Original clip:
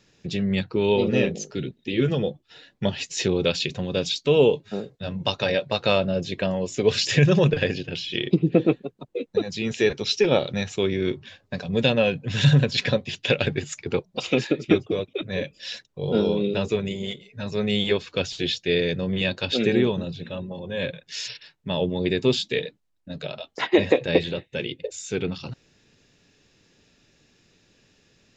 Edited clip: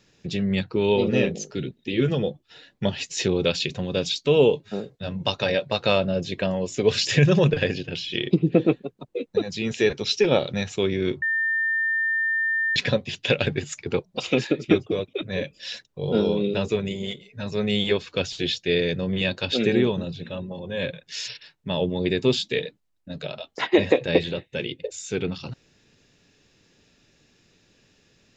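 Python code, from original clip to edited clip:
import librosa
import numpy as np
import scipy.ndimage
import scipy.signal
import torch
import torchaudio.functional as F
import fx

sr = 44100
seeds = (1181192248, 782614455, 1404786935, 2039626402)

y = fx.edit(x, sr, fx.bleep(start_s=11.22, length_s=1.54, hz=1800.0, db=-20.5), tone=tone)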